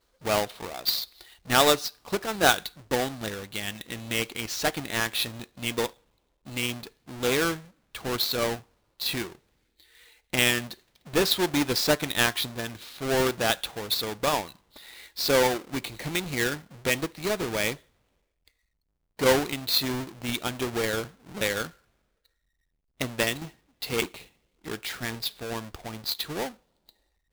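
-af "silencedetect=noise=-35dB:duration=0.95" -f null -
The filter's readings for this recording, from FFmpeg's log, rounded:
silence_start: 9.27
silence_end: 10.33 | silence_duration: 1.06
silence_start: 17.74
silence_end: 19.19 | silence_duration: 1.46
silence_start: 21.66
silence_end: 23.01 | silence_duration: 1.35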